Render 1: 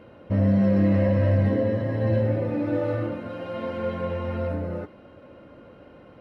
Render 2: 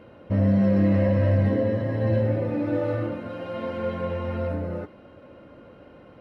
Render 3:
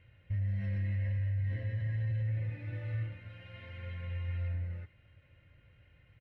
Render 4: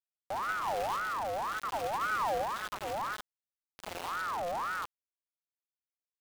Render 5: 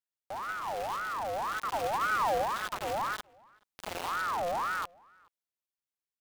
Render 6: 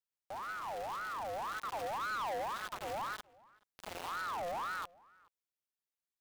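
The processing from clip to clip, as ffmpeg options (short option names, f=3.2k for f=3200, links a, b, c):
-af anull
-af "firequalizer=gain_entry='entry(110,0);entry(220,-25);entry(1200,-21);entry(1900,-1);entry(4900,-14)':delay=0.05:min_phase=1,alimiter=level_in=1dB:limit=-24dB:level=0:latency=1:release=37,volume=-1dB,volume=-3dB"
-af "aecho=1:1:181|362|543|724|905|1086:0.355|0.174|0.0852|0.0417|0.0205|0.01,acrusher=bits=5:mix=0:aa=0.000001,aeval=exprs='val(0)*sin(2*PI*1000*n/s+1000*0.4/1.9*sin(2*PI*1.9*n/s))':c=same"
-filter_complex "[0:a]dynaudnorm=f=370:g=7:m=6dB,asplit=2[a][b];[b]adelay=425.7,volume=-27dB,highshelf=f=4k:g=-9.58[c];[a][c]amix=inputs=2:normalize=0,volume=-3dB"
-af "asoftclip=type=tanh:threshold=-29dB,volume=-4dB"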